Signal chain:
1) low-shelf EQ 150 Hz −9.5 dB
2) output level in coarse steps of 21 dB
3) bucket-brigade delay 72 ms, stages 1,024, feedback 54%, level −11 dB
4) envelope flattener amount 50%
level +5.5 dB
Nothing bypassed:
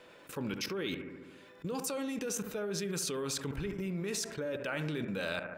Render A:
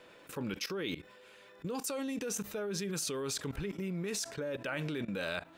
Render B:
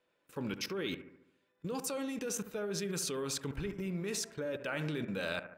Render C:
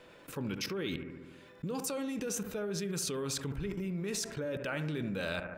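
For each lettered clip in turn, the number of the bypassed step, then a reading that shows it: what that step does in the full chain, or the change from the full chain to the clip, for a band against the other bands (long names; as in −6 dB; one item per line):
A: 3, change in momentary loudness spread +2 LU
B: 4, change in momentary loudness spread −2 LU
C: 1, 125 Hz band +2.5 dB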